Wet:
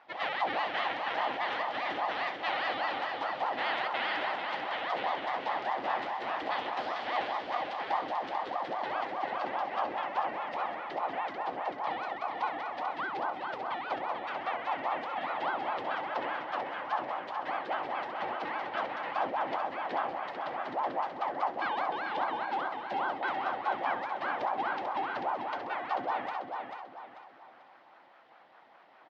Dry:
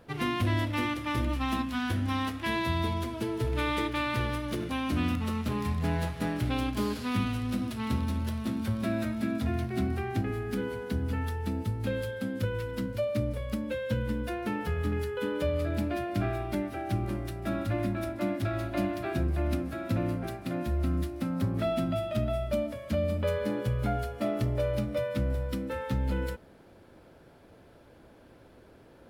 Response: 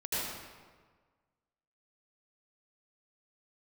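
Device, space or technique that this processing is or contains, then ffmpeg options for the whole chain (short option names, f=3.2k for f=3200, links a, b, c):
voice changer toy: -af "aeval=exprs='val(0)*sin(2*PI*580*n/s+580*0.7/4.9*sin(2*PI*4.9*n/s))':c=same,highpass=410,equalizer=f=430:t=q:w=4:g=-8,equalizer=f=790:t=q:w=4:g=6,equalizer=f=1.9k:t=q:w=4:g=7,equalizer=f=3.1k:t=q:w=4:g=4,lowpass=f=4.7k:w=0.5412,lowpass=f=4.7k:w=1.3066,aecho=1:1:441|882|1323|1764:0.531|0.196|0.0727|0.0269,volume=-2dB"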